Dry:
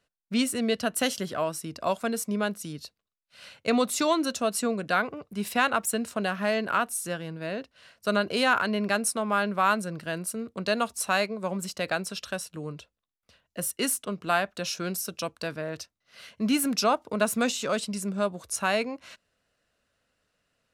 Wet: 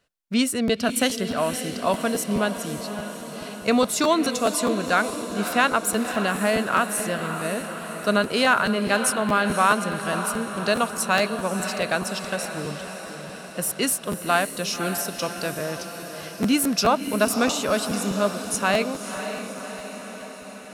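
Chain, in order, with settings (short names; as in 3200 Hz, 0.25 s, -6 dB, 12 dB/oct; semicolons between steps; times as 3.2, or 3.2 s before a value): diffused feedback echo 0.554 s, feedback 65%, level -9.5 dB; crackling interface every 0.21 s, samples 512, repeat, from 0.67; gain +4 dB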